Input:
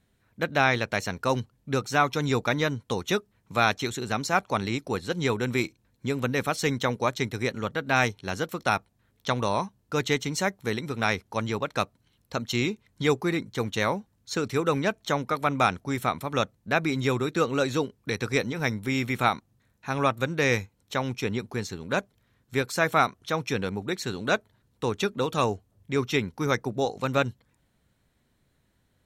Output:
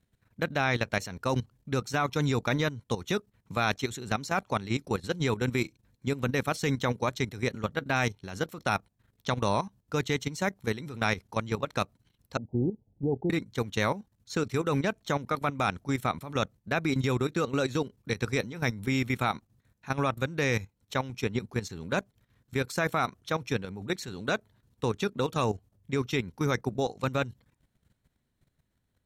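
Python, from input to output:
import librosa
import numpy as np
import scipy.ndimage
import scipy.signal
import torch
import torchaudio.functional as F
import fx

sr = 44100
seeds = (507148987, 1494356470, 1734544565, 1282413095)

y = fx.steep_lowpass(x, sr, hz=860.0, slope=96, at=(12.37, 13.3))
y = fx.bass_treble(y, sr, bass_db=4, treble_db=1)
y = fx.level_steps(y, sr, step_db=13)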